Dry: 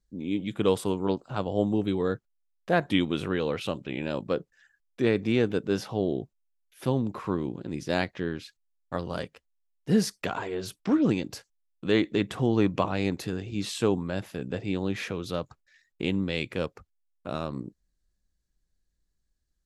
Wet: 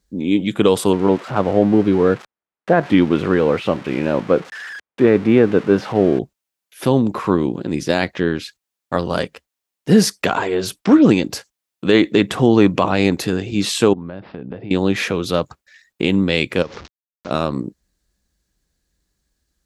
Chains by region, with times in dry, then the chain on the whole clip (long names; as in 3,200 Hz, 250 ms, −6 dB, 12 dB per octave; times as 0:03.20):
0:00.93–0:06.19: spike at every zero crossing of −22.5 dBFS + low-pass filter 1,700 Hz
0:13.93–0:14.71: downward compressor, threshold −37 dBFS + bad sample-rate conversion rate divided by 4×, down none, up filtered + head-to-tape spacing loss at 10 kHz 34 dB
0:16.62–0:17.31: linear delta modulator 32 kbit/s, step −42 dBFS + downward compressor 3 to 1, threshold −39 dBFS
whole clip: high-pass filter 57 Hz; parametric band 110 Hz −5 dB 1 octave; boost into a limiter +14 dB; level −1 dB